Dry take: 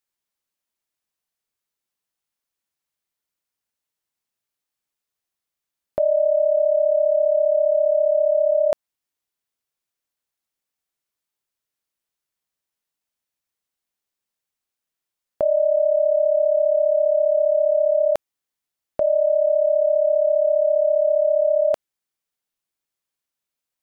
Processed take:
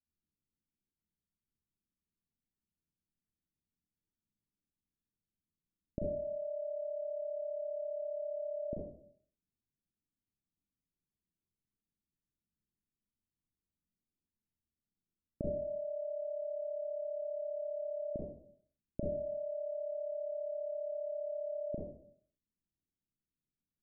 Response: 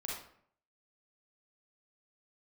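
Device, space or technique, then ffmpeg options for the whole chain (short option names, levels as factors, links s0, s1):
next room: -filter_complex "[0:a]lowpass=f=280:w=0.5412,lowpass=f=280:w=1.3066[s0];[1:a]atrim=start_sample=2205[s1];[s0][s1]afir=irnorm=-1:irlink=0,volume=2.37"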